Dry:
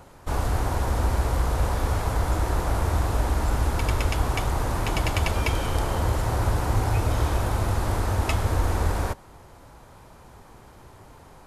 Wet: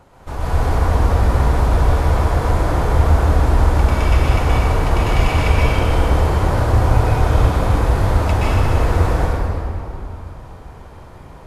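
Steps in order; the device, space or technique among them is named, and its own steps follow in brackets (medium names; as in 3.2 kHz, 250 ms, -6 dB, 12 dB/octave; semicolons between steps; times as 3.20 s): swimming-pool hall (reverberation RT60 2.9 s, pre-delay 117 ms, DRR -8.5 dB; treble shelf 5.7 kHz -8 dB); trim -1 dB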